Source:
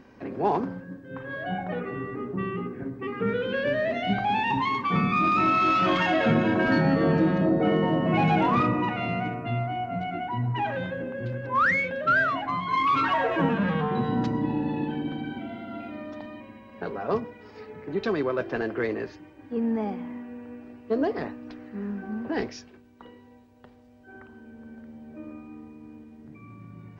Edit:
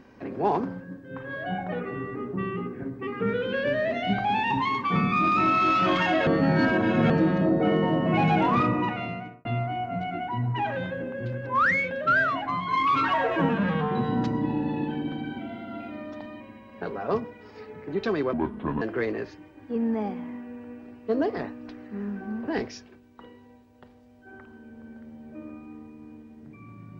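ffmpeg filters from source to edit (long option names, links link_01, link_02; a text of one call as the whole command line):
ffmpeg -i in.wav -filter_complex "[0:a]asplit=6[link_01][link_02][link_03][link_04][link_05][link_06];[link_01]atrim=end=6.272[link_07];[link_02]atrim=start=6.268:end=7.102,asetpts=PTS-STARTPTS,areverse[link_08];[link_03]atrim=start=7.098:end=9.45,asetpts=PTS-STARTPTS,afade=type=out:start_time=1.762:duration=0.59[link_09];[link_04]atrim=start=9.45:end=18.334,asetpts=PTS-STARTPTS,afade=type=in:duration=0.004:curve=hsin[link_10];[link_05]atrim=start=18.33:end=18.63,asetpts=PTS-STARTPTS,asetrate=27342,aresample=44100[link_11];[link_06]atrim=start=18.626[link_12];[link_07][link_08]acrossfade=duration=0.004:curve1=hsin:curve2=hsin[link_13];[link_09][link_10]concat=n=2:v=0:a=1[link_14];[link_13][link_14]acrossfade=duration=0.004:curve1=hsin:curve2=hsin[link_15];[link_15][link_11]acrossfade=duration=0.004:curve1=hsin:curve2=hsin[link_16];[link_16][link_12]acrossfade=duration=0.004:curve1=hsin:curve2=hsin" out.wav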